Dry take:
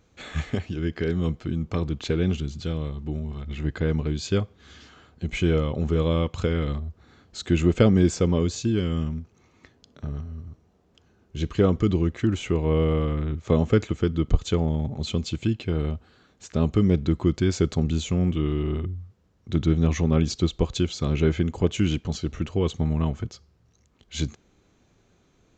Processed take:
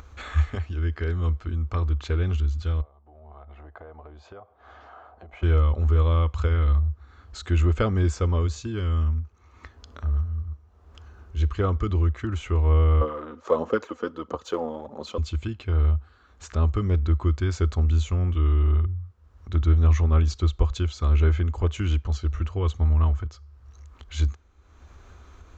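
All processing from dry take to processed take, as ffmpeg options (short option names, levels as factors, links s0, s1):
-filter_complex "[0:a]asettb=1/sr,asplit=3[s0][s1][s2];[s0]atrim=end=2.814[s3];[s1]atrim=start=2.81:end=5.43,asetpts=PTS-STARTPTS,afade=t=in:d=0.004:c=qsin,afade=t=out:st=2.616:d=0.004:c=qsin,bandpass=f=700:t=q:w=4.7,acompressor=threshold=0.00316:ratio=2:attack=3.2:release=140:knee=1:detection=peak[s4];[s2]atrim=start=5.426[s5];[s3][s4]acrossfade=d=0.004:c1=hsin:c2=qsin[s6];[s6][s5]acrossfade=d=0.004:c1=qsin:c2=hsin,asettb=1/sr,asplit=3[s7][s8][s9];[s7]atrim=end=13.014[s10];[s8]atrim=start=13.01:end=15.18,asetpts=PTS-STARTPTS,afade=t=in:d=0.004:c=qsin,afade=t=out:st=2.166:d=0.004:c=qsin,highpass=f=200:w=0.5412,highpass=f=200:w=1.3066,equalizer=f=520:t=q:w=4:g=10,equalizer=f=960:t=q:w=4:g=5,equalizer=f=2200:t=q:w=4:g=-7,equalizer=f=3500:t=q:w=4:g=-4,lowpass=f=7000:w=0.5412,lowpass=f=7000:w=1.3066,aphaser=in_gain=1:out_gain=1:delay=4.2:decay=0.44:speed=1.5:type=sinusoidal[s11];[s9]atrim=start=15.176[s12];[s10][s11]acrossfade=d=0.004:c1=hsin:c2=qsin[s13];[s13][s12]acrossfade=d=0.004:c1=qsin:c2=hsin,lowshelf=f=100:t=q:w=3:g=11,acompressor=mode=upward:threshold=0.0398:ratio=2.5,equalizer=f=1200:t=o:w=1.1:g=11,volume=0.447"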